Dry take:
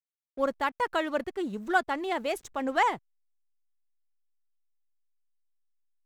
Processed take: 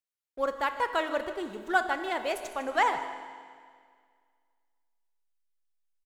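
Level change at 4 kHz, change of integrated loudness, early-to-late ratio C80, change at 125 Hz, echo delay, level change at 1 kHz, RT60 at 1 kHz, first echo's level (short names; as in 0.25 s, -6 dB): +0.5 dB, -0.5 dB, 9.5 dB, n/a, 0.154 s, +0.5 dB, 1.9 s, -15.0 dB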